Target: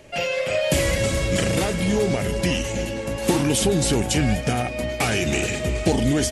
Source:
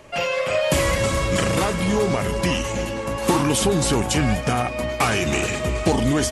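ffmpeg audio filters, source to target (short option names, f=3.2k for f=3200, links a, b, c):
-af "equalizer=f=1.1k:t=o:w=0.62:g=-11"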